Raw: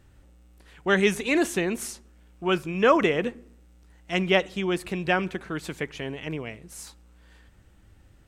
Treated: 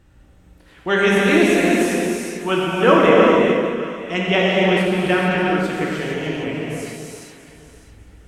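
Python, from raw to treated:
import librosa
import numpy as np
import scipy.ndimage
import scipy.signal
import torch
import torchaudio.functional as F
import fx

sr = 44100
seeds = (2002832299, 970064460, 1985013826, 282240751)

y = fx.high_shelf(x, sr, hz=4600.0, db=-5.0)
y = fx.echo_alternate(y, sr, ms=302, hz=1000.0, feedback_pct=50, wet_db=-7.0)
y = fx.rev_gated(y, sr, seeds[0], gate_ms=490, shape='flat', drr_db=-5.0)
y = y * librosa.db_to_amplitude(2.5)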